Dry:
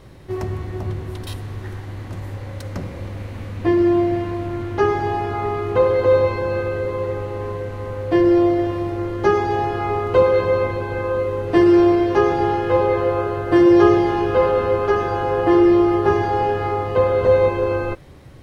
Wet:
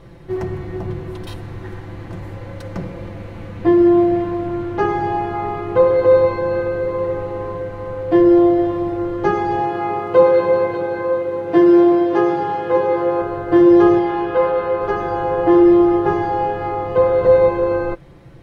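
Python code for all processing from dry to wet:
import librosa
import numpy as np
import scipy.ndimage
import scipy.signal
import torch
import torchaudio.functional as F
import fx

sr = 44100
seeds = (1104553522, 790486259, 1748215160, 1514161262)

y = fx.chain(x, sr, fx.highpass(hz=140.0, slope=12),
    fx.echo_single(ms=593, db=-9.5), at=(9.6, 13.22))
y = fx.chain(y, sr, fx.lowpass(hz=3300.0, slope=12),
    fx.tilt_eq(slope=2.0), at=(13.99, 14.81))
y = y + 0.55 * np.pad(y, (int(5.9 * sr / 1000.0), 0))[:len(y)]
y = fx.rider(y, sr, range_db=3, speed_s=2.0)
y = fx.high_shelf(y, sr, hz=3400.0, db=-9.5)
y = y * 10.0 ** (-1.5 / 20.0)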